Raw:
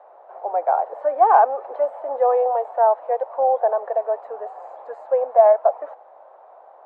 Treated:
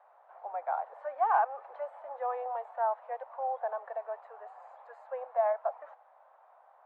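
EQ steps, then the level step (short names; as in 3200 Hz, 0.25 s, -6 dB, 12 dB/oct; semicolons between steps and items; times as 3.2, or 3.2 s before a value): HPF 1500 Hz 12 dB/oct; high shelf 2000 Hz -10 dB; 0.0 dB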